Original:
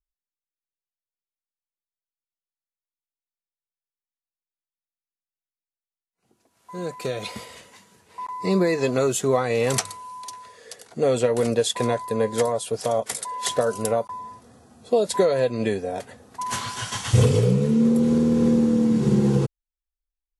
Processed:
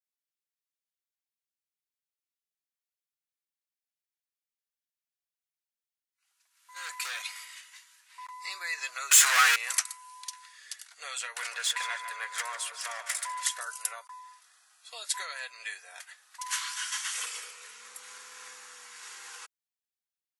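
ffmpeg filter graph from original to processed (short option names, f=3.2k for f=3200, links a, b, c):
-filter_complex "[0:a]asettb=1/sr,asplit=3[a][b][c];[a]atrim=end=6.764[d];[b]atrim=start=6.76:end=7.22,asetpts=PTS-STARTPTS,afade=t=in:d=0.004:c=qsin,afade=t=out:st=0.456:d=0.004:c=qsin,acontrast=87,volume=19.5dB,asoftclip=hard,volume=-19.5dB[e];[c]atrim=start=7.216[f];[d][e]acrossfade=d=0.004:c1=hsin:c2=qsin[g];[g][f]acrossfade=d=0.004:c1=qsin:c2=hsin,asettb=1/sr,asplit=3[h][i][j];[h]atrim=end=9.114[k];[i]atrim=start=9.11:end=9.56,asetpts=PTS-STARTPTS,afade=t=in:d=0.004:c=qsin,afade=t=out:st=0.446:d=0.004:c=qsin,aecho=1:1:6.3:0.77,atrim=end_sample=19845,asplit=2[l][m];[m]highpass=f=720:p=1,volume=34dB,asoftclip=type=tanh:threshold=-6dB[n];[l][n]amix=inputs=2:normalize=0,lowpass=f=7.1k:p=1,volume=-6dB[o];[j]atrim=start=9.556[p];[k][o]acrossfade=d=0.004:c1=hsin:c2=qsin[q];[q][p]acrossfade=d=0.004:c1=qsin:c2=hsin,asettb=1/sr,asplit=3[r][s][t];[r]atrim=end=11.364[u];[s]atrim=start=11.36:end=13.43,asetpts=PTS-STARTPTS,afade=t=in:d=0.004:c=qsin,afade=t=out:st=2.066:d=0.004:c=qsin,asplit=2[v][w];[w]highpass=f=720:p=1,volume=14dB,asoftclip=type=tanh:threshold=-9.5dB[x];[v][x]amix=inputs=2:normalize=0,lowpass=f=2.8k:p=1,volume=-6dB,asplit=2[y][z];[z]adelay=148,lowpass=f=4k:p=1,volume=-9dB,asplit=2[aa][ab];[ab]adelay=148,lowpass=f=4k:p=1,volume=0.54,asplit=2[ac][ad];[ad]adelay=148,lowpass=f=4k:p=1,volume=0.54,asplit=2[ae][af];[af]adelay=148,lowpass=f=4k:p=1,volume=0.54,asplit=2[ag][ah];[ah]adelay=148,lowpass=f=4k:p=1,volume=0.54,asplit=2[ai][aj];[aj]adelay=148,lowpass=f=4k:p=1,volume=0.54[ak];[y][aa][ac][ae][ag][ai][ak]amix=inputs=7:normalize=0,atrim=end_sample=91287[al];[t]atrim=start=13.426[am];[u][al]acrossfade=d=0.004:c1=hsin:c2=qsin[an];[an][am]acrossfade=d=0.004:c1=qsin:c2=hsin,adynamicequalizer=threshold=0.00447:dfrequency=3700:dqfactor=1.3:tfrequency=3700:tqfactor=1.3:attack=5:release=100:ratio=0.375:range=3.5:mode=cutabove:tftype=bell,highpass=f=1.4k:w=0.5412,highpass=f=1.4k:w=1.3066"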